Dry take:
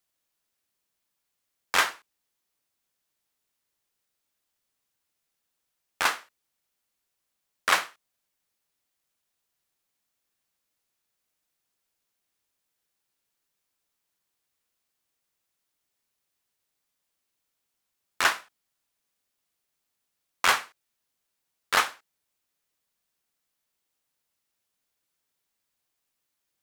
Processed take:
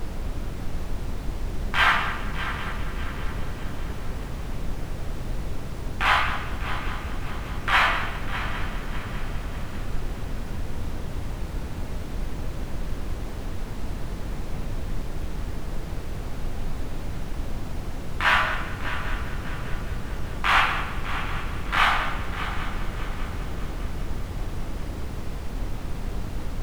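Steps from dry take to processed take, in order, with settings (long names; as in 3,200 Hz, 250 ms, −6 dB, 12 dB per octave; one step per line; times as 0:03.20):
flat-topped bell 1,500 Hz +15 dB 2.8 octaves
reversed playback
downward compressor 6 to 1, threshold −22 dBFS, peak gain reduction 18.5 dB
reversed playback
rectangular room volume 360 cubic metres, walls mixed, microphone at 1.2 metres
chorus effect 0.57 Hz, delay 15 ms, depth 5.8 ms
background noise brown −32 dBFS
on a send: echo machine with several playback heads 200 ms, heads first and third, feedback 63%, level −13 dB
on the sum: level +4 dB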